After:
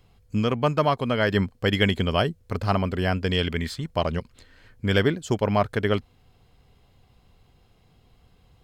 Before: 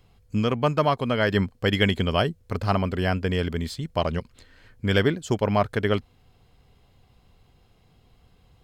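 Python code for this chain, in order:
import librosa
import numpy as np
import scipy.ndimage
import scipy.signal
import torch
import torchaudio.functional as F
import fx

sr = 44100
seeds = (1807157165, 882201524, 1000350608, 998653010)

y = fx.peak_eq(x, sr, hz=fx.line((3.23, 5100.0), (3.89, 980.0)), db=10.0, octaves=0.93, at=(3.23, 3.89), fade=0.02)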